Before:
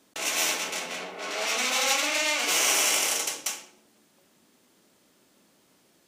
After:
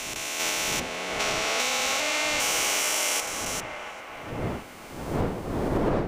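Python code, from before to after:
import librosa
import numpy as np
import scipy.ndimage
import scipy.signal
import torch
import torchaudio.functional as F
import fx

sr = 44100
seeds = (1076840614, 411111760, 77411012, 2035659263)

p1 = fx.spec_steps(x, sr, hold_ms=400)
p2 = fx.dmg_wind(p1, sr, seeds[0], corner_hz=490.0, level_db=-43.0)
p3 = fx.recorder_agc(p2, sr, target_db=-16.5, rise_db_per_s=10.0, max_gain_db=30)
y = p3 + fx.echo_wet_bandpass(p3, sr, ms=708, feedback_pct=51, hz=980.0, wet_db=-4.5, dry=0)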